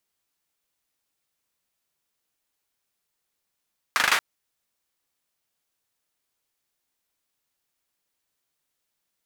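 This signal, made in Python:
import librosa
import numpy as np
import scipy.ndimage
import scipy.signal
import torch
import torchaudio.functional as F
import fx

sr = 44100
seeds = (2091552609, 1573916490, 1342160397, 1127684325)

y = fx.drum_clap(sr, seeds[0], length_s=0.23, bursts=5, spacing_ms=39, hz=1500.0, decay_s=0.43)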